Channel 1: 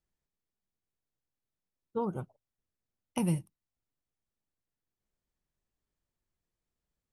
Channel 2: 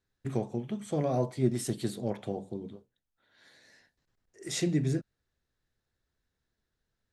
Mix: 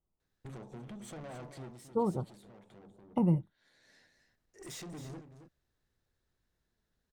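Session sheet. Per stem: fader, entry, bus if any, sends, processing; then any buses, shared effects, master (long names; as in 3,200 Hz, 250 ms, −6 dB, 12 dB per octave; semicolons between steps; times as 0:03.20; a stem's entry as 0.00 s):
+2.5 dB, 0.00 s, no send, no echo send, Savitzky-Golay smoothing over 65 samples
+1.0 dB, 0.20 s, no send, echo send −10.5 dB, downward compressor 4 to 1, threshold −35 dBFS, peak gain reduction 13 dB; tube saturation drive 44 dB, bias 0.45; automatic ducking −15 dB, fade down 0.30 s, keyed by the first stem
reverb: not used
echo: single-tap delay 270 ms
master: no processing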